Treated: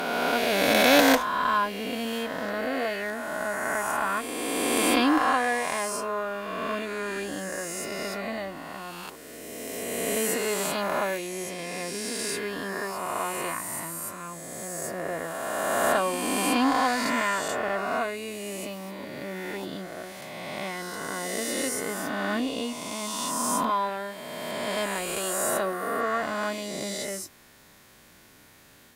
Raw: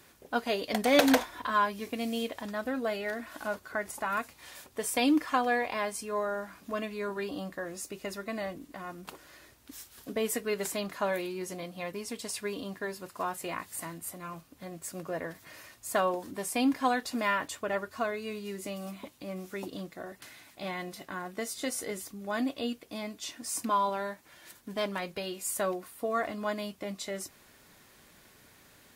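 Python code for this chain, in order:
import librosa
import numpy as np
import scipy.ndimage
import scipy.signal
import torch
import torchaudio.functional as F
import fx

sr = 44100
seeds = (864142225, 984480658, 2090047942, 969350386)

y = fx.spec_swells(x, sr, rise_s=2.79)
y = fx.cheby_harmonics(y, sr, harmonics=(6,), levels_db=(-31,), full_scale_db=-5.0)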